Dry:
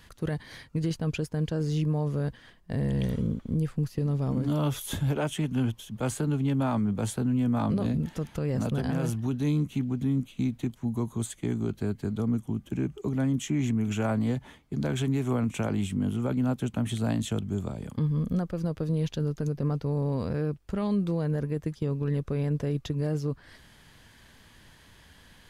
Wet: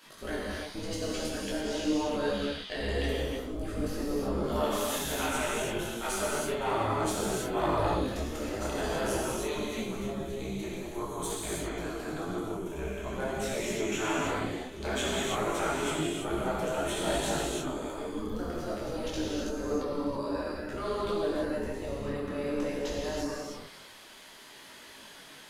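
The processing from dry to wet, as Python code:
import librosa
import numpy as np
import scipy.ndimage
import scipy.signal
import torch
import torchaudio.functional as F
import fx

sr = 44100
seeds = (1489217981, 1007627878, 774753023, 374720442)

y = fx.diode_clip(x, sr, knee_db=-21.5)
y = fx.spec_gate(y, sr, threshold_db=-10, keep='weak')
y = fx.peak_eq(y, sr, hz=3300.0, db=14.0, octaves=1.5, at=(2.11, 2.9))
y = fx.rev_gated(y, sr, seeds[0], gate_ms=360, shape='flat', drr_db=-5.5)
y = fx.detune_double(y, sr, cents=18)
y = y * 10.0 ** (5.5 / 20.0)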